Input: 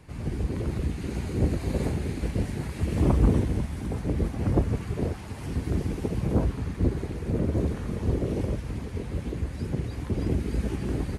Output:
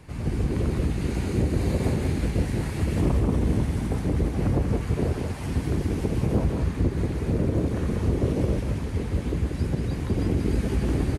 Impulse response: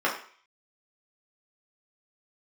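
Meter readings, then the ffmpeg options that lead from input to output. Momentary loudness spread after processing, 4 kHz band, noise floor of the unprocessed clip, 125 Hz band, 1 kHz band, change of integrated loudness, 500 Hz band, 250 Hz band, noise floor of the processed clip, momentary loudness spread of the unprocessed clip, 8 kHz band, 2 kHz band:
4 LU, +4.0 dB, -37 dBFS, +3.0 dB, +2.5 dB, +2.5 dB, +3.0 dB, +2.5 dB, -31 dBFS, 7 LU, +4.0 dB, +4.0 dB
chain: -filter_complex "[0:a]alimiter=limit=-18dB:level=0:latency=1:release=148,asplit=2[a][b];[b]aecho=0:1:185:0.562[c];[a][c]amix=inputs=2:normalize=0,volume=3.5dB"

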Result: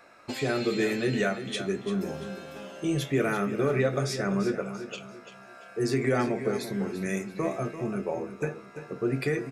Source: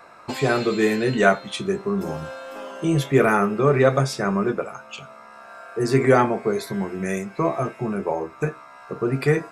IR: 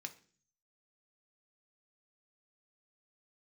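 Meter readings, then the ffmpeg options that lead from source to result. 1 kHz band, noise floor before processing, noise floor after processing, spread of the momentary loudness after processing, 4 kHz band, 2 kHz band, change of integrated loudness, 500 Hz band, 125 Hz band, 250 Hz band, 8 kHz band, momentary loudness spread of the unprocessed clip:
-11.0 dB, -45 dBFS, -49 dBFS, 14 LU, -3.5 dB, -7.5 dB, -7.5 dB, -7.5 dB, -7.0 dB, -5.5 dB, -4.0 dB, 16 LU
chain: -filter_complex "[0:a]equalizer=f=1k:w=1.8:g=-8.5,alimiter=limit=-11dB:level=0:latency=1:release=141,aecho=1:1:341|682|1023|1364:0.282|0.0986|0.0345|0.0121,asplit=2[a][b];[1:a]atrim=start_sample=2205[c];[b][c]afir=irnorm=-1:irlink=0,volume=0.5dB[d];[a][d]amix=inputs=2:normalize=0,volume=-8dB"

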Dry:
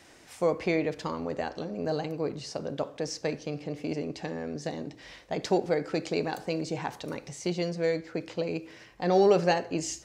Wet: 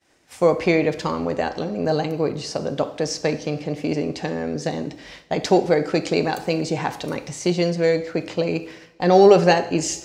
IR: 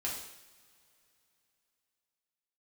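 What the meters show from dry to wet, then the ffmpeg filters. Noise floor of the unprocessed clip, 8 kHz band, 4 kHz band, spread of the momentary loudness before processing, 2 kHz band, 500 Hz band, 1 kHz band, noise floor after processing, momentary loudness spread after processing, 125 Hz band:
-54 dBFS, +9.0 dB, +9.0 dB, 10 LU, +9.0 dB, +9.0 dB, +9.5 dB, -51 dBFS, 10 LU, +9.5 dB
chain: -filter_complex "[0:a]agate=range=-33dB:threshold=-44dB:ratio=3:detection=peak,asplit=2[a][b];[1:a]atrim=start_sample=2205[c];[b][c]afir=irnorm=-1:irlink=0,volume=-12dB[d];[a][d]amix=inputs=2:normalize=0,volume=7.5dB"

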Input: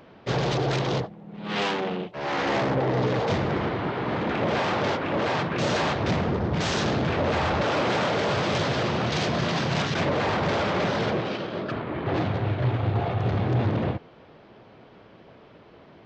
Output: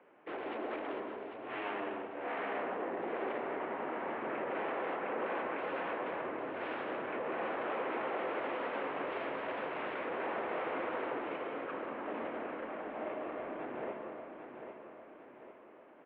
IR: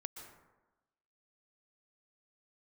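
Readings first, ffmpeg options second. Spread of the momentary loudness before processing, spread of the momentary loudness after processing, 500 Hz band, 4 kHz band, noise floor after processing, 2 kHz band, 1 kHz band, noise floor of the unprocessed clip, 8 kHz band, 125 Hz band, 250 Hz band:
6 LU, 10 LU, -10.5 dB, -22.0 dB, -56 dBFS, -11.0 dB, -10.5 dB, -51 dBFS, under -40 dB, -34.0 dB, -15.0 dB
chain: -filter_complex "[0:a]alimiter=limit=-18.5dB:level=0:latency=1,aecho=1:1:797|1594|2391|3188|3985:0.398|0.187|0.0879|0.0413|0.0194[a];[1:a]atrim=start_sample=2205,asetrate=37044,aresample=44100[b];[a][b]afir=irnorm=-1:irlink=0,highpass=f=390:t=q:w=0.5412,highpass=f=390:t=q:w=1.307,lowpass=f=2.7k:t=q:w=0.5176,lowpass=f=2.7k:t=q:w=0.7071,lowpass=f=2.7k:t=q:w=1.932,afreqshift=-78,volume=-6.5dB"

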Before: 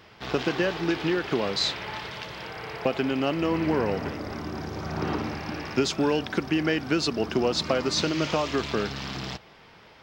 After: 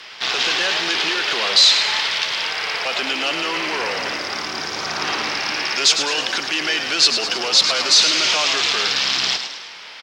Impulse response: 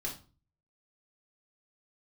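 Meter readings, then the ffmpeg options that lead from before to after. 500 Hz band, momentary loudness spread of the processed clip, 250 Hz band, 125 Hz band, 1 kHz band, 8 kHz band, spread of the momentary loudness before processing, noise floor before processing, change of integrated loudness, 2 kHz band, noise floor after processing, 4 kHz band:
-2.0 dB, 11 LU, -7.0 dB, -11.5 dB, +7.0 dB, +17.0 dB, 10 LU, -52 dBFS, +10.5 dB, +12.5 dB, -37 dBFS, +17.0 dB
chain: -filter_complex "[0:a]apsyclip=26.5dB,lowpass=4.9k,aderivative,acrossover=split=180|1200|2500[a][b][c][d];[c]asoftclip=type=tanh:threshold=-22.5dB[e];[a][b][e][d]amix=inputs=4:normalize=0,asplit=7[f][g][h][i][j][k][l];[g]adelay=105,afreqshift=59,volume=-8dB[m];[h]adelay=210,afreqshift=118,volume=-13.7dB[n];[i]adelay=315,afreqshift=177,volume=-19.4dB[o];[j]adelay=420,afreqshift=236,volume=-25dB[p];[k]adelay=525,afreqshift=295,volume=-30.7dB[q];[l]adelay=630,afreqshift=354,volume=-36.4dB[r];[f][m][n][o][p][q][r]amix=inputs=7:normalize=0"

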